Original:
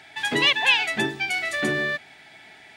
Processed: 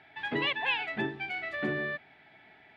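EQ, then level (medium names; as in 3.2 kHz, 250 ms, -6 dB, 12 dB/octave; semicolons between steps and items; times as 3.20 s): distance through air 390 m; -5.5 dB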